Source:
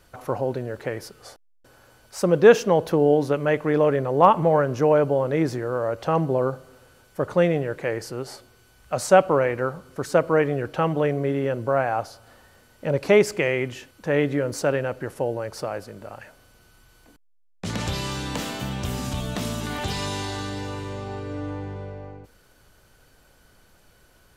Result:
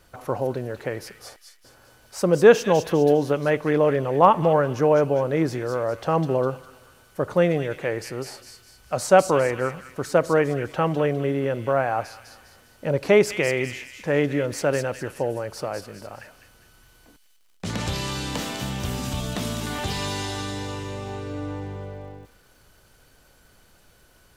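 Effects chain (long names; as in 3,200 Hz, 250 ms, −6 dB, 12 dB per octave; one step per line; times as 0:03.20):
surface crackle 220 per second −54 dBFS
delay with a high-pass on its return 203 ms, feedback 42%, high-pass 2,600 Hz, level −4 dB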